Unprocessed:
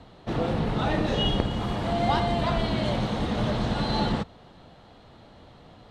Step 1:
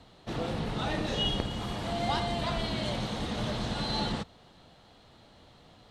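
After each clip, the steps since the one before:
high-shelf EQ 3,000 Hz +10.5 dB
level −7 dB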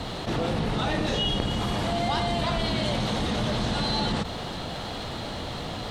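envelope flattener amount 70%
level +2 dB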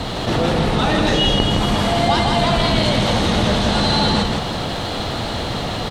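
single-tap delay 163 ms −3.5 dB
level +8.5 dB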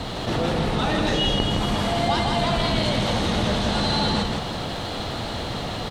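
bit reduction 10 bits
level −5.5 dB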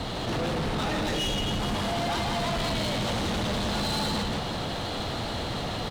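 hard clipping −23.5 dBFS, distortion −8 dB
level −2 dB

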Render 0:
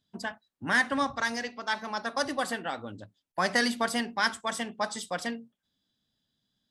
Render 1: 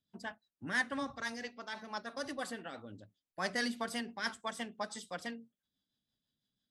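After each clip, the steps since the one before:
rotating-speaker cabinet horn 6 Hz
level −6.5 dB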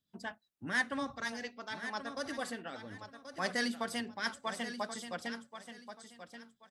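repeating echo 1,081 ms, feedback 25%, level −10.5 dB
level +1 dB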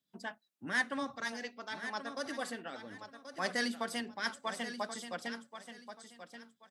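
high-pass filter 170 Hz 12 dB per octave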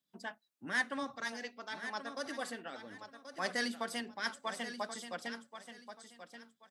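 low-shelf EQ 150 Hz −5 dB
level −1 dB

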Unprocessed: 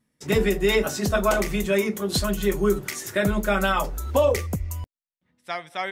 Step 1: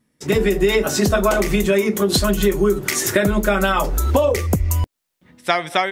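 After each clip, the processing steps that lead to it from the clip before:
automatic gain control gain up to 16 dB
parametric band 340 Hz +3.5 dB 0.77 octaves
downward compressor, threshold −19 dBFS, peak gain reduction 13.5 dB
level +5 dB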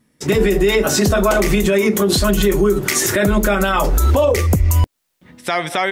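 brickwall limiter −12.5 dBFS, peak gain reduction 11 dB
level +6 dB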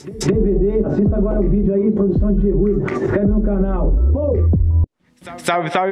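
treble cut that deepens with the level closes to 350 Hz, closed at −12 dBFS
echo ahead of the sound 216 ms −19 dB
downward compressor, threshold −17 dBFS, peak gain reduction 7 dB
level +5.5 dB

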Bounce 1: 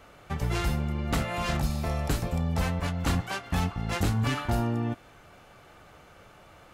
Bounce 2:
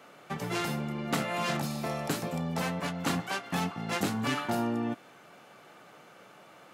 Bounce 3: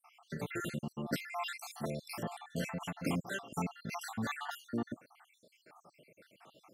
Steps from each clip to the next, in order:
high-pass filter 160 Hz 24 dB per octave
time-frequency cells dropped at random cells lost 69%; level −2.5 dB

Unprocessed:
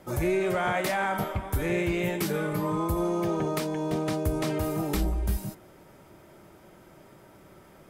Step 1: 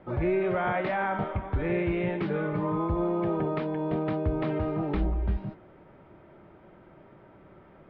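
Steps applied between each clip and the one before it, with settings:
Bessel low-pass filter 2,000 Hz, order 8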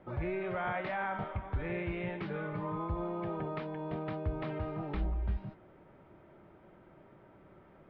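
dynamic equaliser 320 Hz, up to −6 dB, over −41 dBFS, Q 0.72
level −5 dB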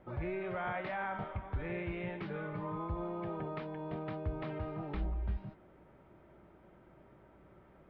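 mains hum 60 Hz, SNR 30 dB
level −2.5 dB

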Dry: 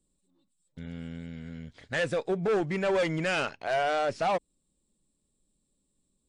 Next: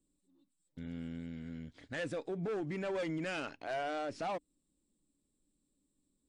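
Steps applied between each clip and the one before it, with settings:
parametric band 290 Hz +11 dB 0.41 octaves
brickwall limiter −25 dBFS, peak gain reduction 8 dB
level −6 dB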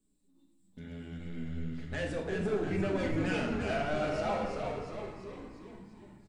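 echo with shifted repeats 346 ms, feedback 59%, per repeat −83 Hz, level −4 dB
convolution reverb RT60 1.2 s, pre-delay 5 ms, DRR 0 dB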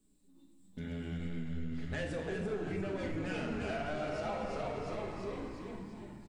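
downward compressor, threshold −39 dBFS, peak gain reduction 12 dB
on a send: single-tap delay 252 ms −11 dB
on the sum: level +4.5 dB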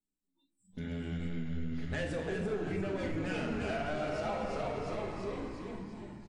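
noise reduction from a noise print of the clip's start 24 dB
level +2 dB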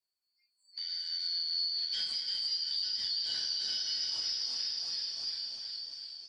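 band-splitting scrambler in four parts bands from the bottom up 4321
feedback echo with a swinging delay time 461 ms, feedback 63%, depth 152 cents, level −19 dB

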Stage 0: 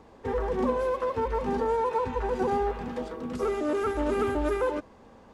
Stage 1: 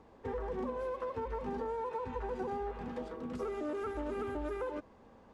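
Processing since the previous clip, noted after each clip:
high-shelf EQ 4,100 Hz −6 dB
downward compressor, threshold −28 dBFS, peak gain reduction 7 dB
level −6 dB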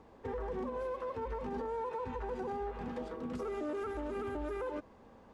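brickwall limiter −31.5 dBFS, peak gain reduction 5 dB
level +1 dB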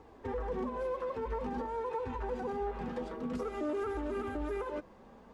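flanger 0.51 Hz, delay 2.3 ms, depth 3.5 ms, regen −43%
level +6 dB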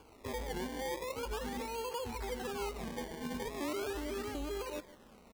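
slap from a distant wall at 26 metres, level −17 dB
sample-and-hold swept by an LFO 23×, swing 100% 0.39 Hz
wow of a warped record 78 rpm, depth 100 cents
level −3 dB

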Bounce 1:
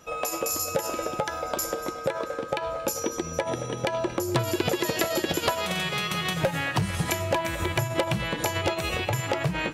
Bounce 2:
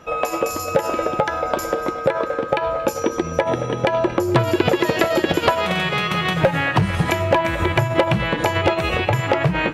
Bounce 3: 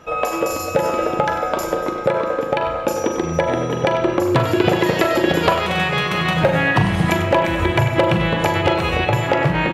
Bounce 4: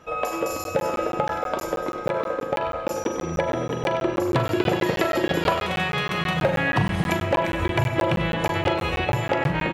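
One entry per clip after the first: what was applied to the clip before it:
bass and treble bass −1 dB, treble −14 dB; level +9 dB
multi-tap delay 42/97/823 ms −12.5/−12/−20 dB; on a send at −6 dB: convolution reverb RT60 0.85 s, pre-delay 36 ms
regular buffer underruns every 0.16 s, samples 512, zero, from 0:00.64; level −5.5 dB

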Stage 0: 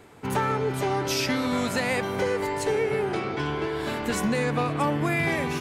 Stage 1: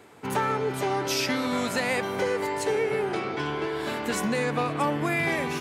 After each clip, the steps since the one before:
high-pass filter 190 Hz 6 dB per octave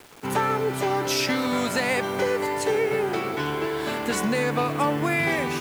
bit reduction 8 bits
level +2.5 dB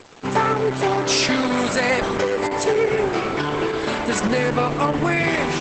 level +5 dB
Opus 10 kbit/s 48,000 Hz

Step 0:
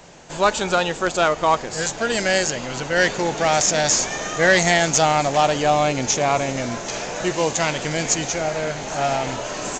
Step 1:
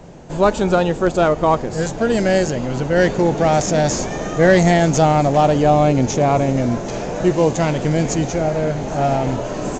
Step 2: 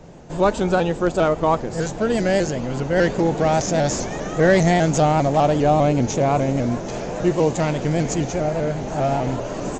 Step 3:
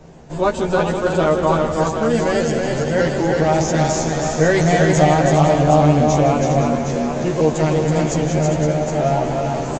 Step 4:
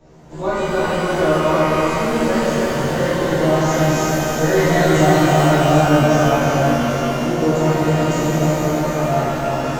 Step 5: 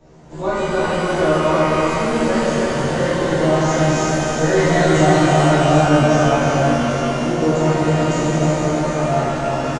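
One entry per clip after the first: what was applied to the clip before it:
tilt shelving filter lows +9 dB, about 800 Hz; level +2 dB
pitch modulation by a square or saw wave saw up 5 Hz, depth 100 cents; level −3 dB
double-tracking delay 13 ms −3 dB; on a send: multi-tap delay 160/325/404/515/764 ms −12.5/−4/−9.5/−11.5/−8 dB; on the sum: level −1.5 dB
reverb with rising layers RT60 2 s, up +12 semitones, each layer −8 dB, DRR −9 dB; level −10.5 dB
downsampling to 22,050 Hz

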